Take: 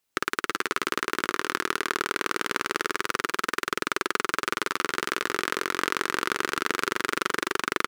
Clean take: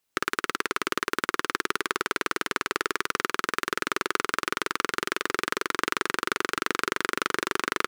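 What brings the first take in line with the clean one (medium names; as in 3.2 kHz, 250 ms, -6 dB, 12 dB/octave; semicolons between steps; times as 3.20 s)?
inverse comb 334 ms -9 dB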